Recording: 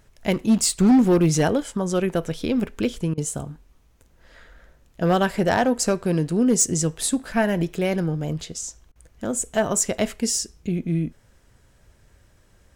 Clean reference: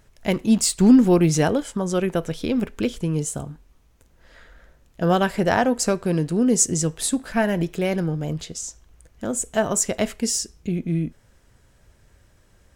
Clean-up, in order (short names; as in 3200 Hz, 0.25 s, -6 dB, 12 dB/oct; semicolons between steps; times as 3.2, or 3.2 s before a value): clip repair -11.5 dBFS; interpolate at 3.14/8.92, 35 ms